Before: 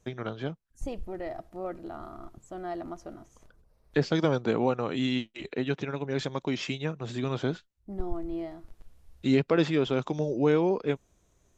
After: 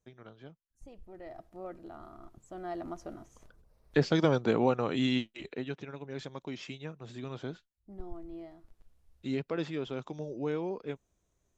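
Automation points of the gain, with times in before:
0.89 s -16.5 dB
1.43 s -7 dB
2.19 s -7 dB
3 s -0.5 dB
5.17 s -0.5 dB
5.8 s -10 dB

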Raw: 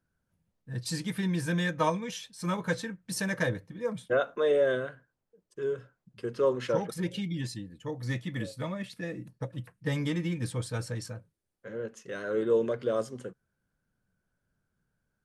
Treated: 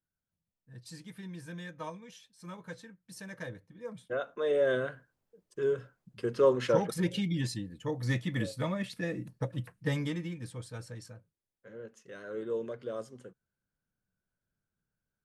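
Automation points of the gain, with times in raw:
3.2 s -14 dB
4.34 s -6.5 dB
4.88 s +2 dB
9.75 s +2 dB
10.41 s -9 dB

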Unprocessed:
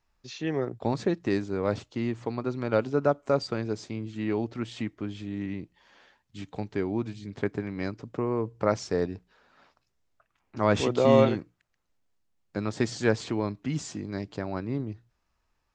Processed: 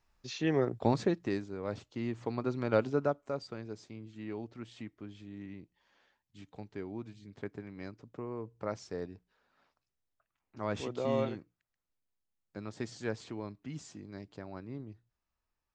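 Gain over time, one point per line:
0.89 s 0 dB
1.57 s -11 dB
2.39 s -3 dB
2.89 s -3 dB
3.32 s -12 dB

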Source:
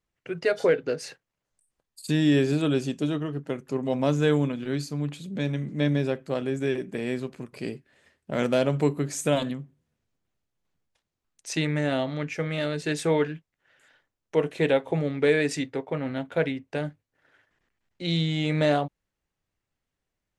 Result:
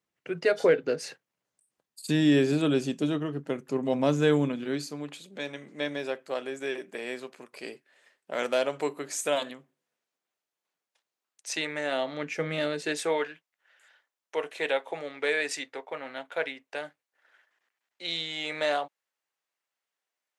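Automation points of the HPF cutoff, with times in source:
4.48 s 160 Hz
5.27 s 530 Hz
11.9 s 530 Hz
12.5 s 190 Hz
13.31 s 690 Hz

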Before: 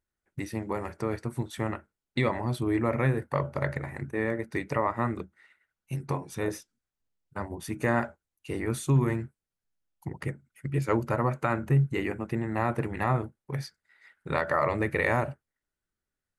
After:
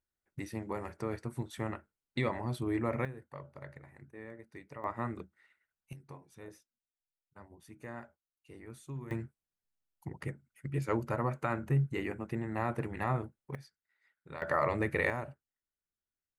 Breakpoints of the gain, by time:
-6 dB
from 3.05 s -18.5 dB
from 4.84 s -8 dB
from 5.93 s -19 dB
from 9.11 s -6 dB
from 13.55 s -16.5 dB
from 14.42 s -4 dB
from 15.1 s -11.5 dB

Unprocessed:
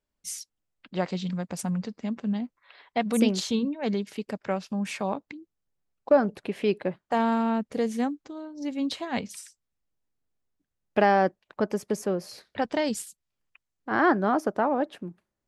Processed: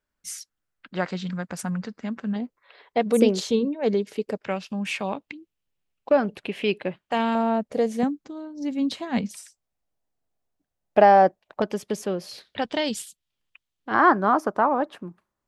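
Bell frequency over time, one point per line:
bell +9.5 dB 0.8 oct
1500 Hz
from 2.36 s 450 Hz
from 4.43 s 2800 Hz
from 7.35 s 610 Hz
from 8.03 s 200 Hz
from 9.31 s 690 Hz
from 11.62 s 3300 Hz
from 13.94 s 1100 Hz

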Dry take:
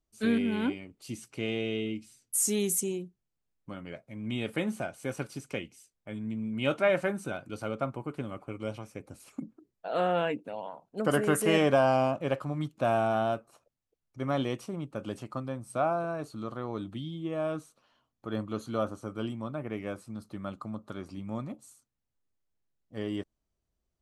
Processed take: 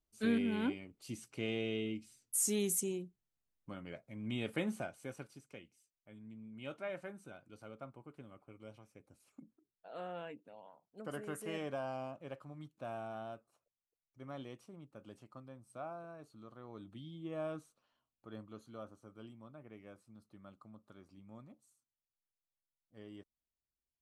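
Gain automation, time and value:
4.75 s -5.5 dB
5.45 s -17 dB
16.52 s -17 dB
17.39 s -8 dB
18.73 s -18 dB

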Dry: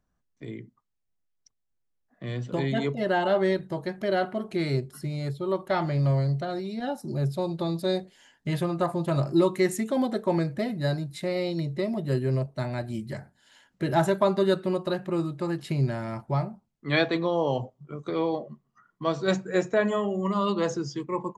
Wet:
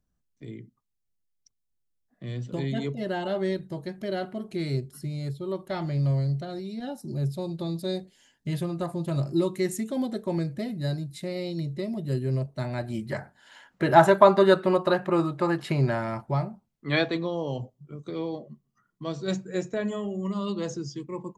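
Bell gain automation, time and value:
bell 1100 Hz 2.7 oct
12.19 s -8.5 dB
12.73 s -0.5 dB
13.17 s +9.5 dB
15.88 s +9.5 dB
16.37 s -0.5 dB
16.92 s -0.5 dB
17.46 s -10.5 dB

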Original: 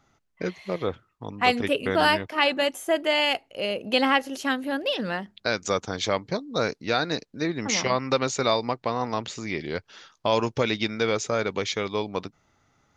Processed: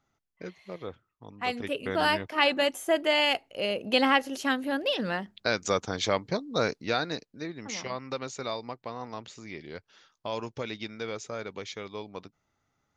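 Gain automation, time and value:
1.31 s -11 dB
2.44 s -1.5 dB
6.77 s -1.5 dB
7.55 s -11 dB

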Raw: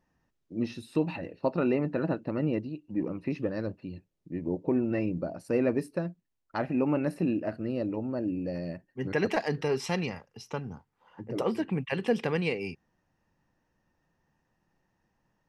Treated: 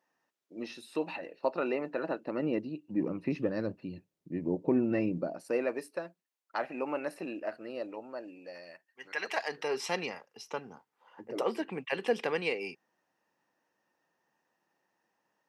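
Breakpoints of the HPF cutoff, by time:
2.05 s 460 Hz
3 s 130 Hz
5.04 s 130 Hz
5.68 s 560 Hz
7.76 s 560 Hz
9.06 s 1300 Hz
9.87 s 380 Hz

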